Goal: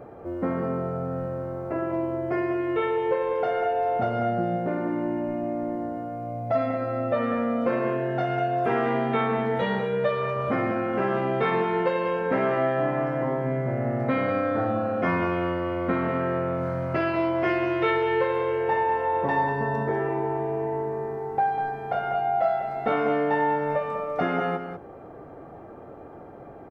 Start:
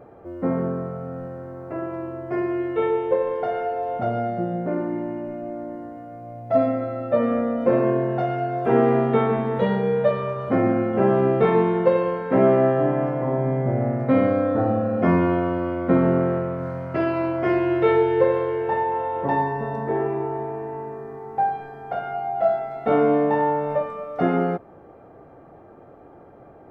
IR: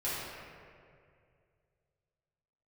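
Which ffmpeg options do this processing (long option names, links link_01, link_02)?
-filter_complex "[0:a]acrossover=split=1100[link_01][link_02];[link_01]acompressor=threshold=-28dB:ratio=6[link_03];[link_03][link_02]amix=inputs=2:normalize=0,aecho=1:1:196:0.398,volume=3dB"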